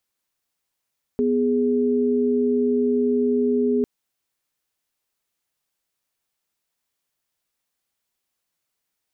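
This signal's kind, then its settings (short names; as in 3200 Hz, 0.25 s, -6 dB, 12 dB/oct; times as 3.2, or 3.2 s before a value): chord B3/G#4 sine, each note -20 dBFS 2.65 s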